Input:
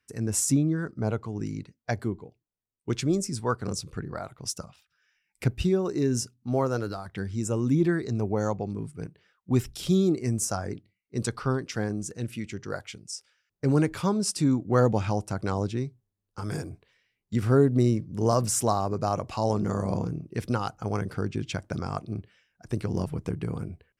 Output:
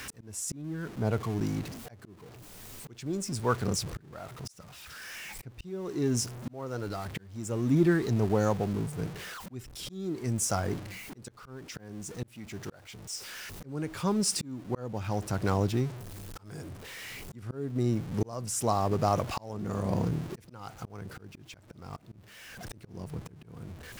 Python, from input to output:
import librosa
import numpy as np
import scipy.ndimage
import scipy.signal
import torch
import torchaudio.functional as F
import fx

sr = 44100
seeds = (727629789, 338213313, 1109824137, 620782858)

y = x + 0.5 * 10.0 ** (-36.0 / 20.0) * np.sign(x)
y = fx.auto_swell(y, sr, attack_ms=700.0)